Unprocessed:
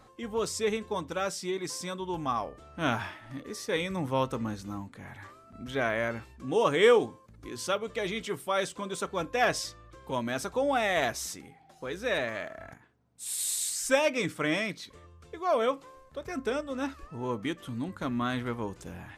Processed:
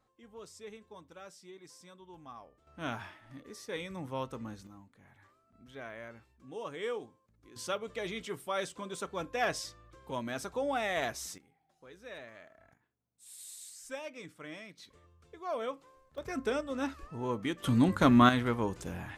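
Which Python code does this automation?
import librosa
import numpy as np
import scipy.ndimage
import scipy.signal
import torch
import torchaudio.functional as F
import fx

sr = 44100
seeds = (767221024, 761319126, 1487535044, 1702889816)

y = fx.gain(x, sr, db=fx.steps((0.0, -18.5), (2.67, -9.0), (4.67, -16.0), (7.56, -5.5), (11.38, -17.0), (14.78, -9.5), (16.18, -1.5), (17.64, 9.5), (18.29, 2.5)))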